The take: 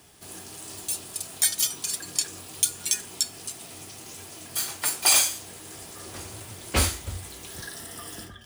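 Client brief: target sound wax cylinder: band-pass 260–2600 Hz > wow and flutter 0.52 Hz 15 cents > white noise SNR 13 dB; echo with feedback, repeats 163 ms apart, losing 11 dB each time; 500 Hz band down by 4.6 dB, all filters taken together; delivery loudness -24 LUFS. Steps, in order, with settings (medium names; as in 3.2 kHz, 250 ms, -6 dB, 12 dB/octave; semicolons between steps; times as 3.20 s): band-pass 260–2600 Hz; peaking EQ 500 Hz -5.5 dB; feedback delay 163 ms, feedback 28%, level -11 dB; wow and flutter 0.52 Hz 15 cents; white noise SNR 13 dB; trim +14 dB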